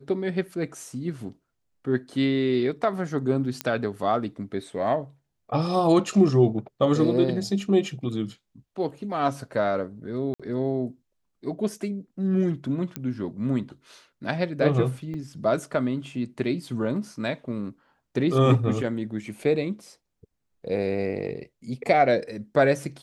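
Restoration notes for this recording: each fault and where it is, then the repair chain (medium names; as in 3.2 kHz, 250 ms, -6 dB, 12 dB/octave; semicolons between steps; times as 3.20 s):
3.61 s: pop -11 dBFS
10.34–10.40 s: dropout 56 ms
12.96 s: pop -15 dBFS
15.14 s: dropout 4.8 ms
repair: de-click; interpolate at 10.34 s, 56 ms; interpolate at 15.14 s, 4.8 ms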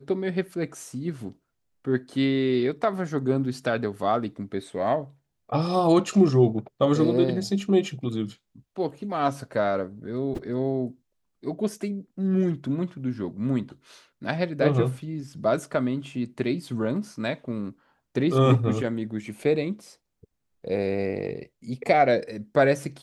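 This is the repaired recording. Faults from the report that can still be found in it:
nothing left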